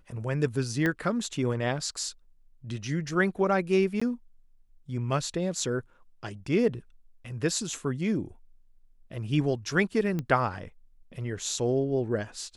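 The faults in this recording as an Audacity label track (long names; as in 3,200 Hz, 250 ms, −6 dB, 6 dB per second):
0.860000	0.860000	click −15 dBFS
4.000000	4.010000	drop-out 15 ms
10.190000	10.190000	click −19 dBFS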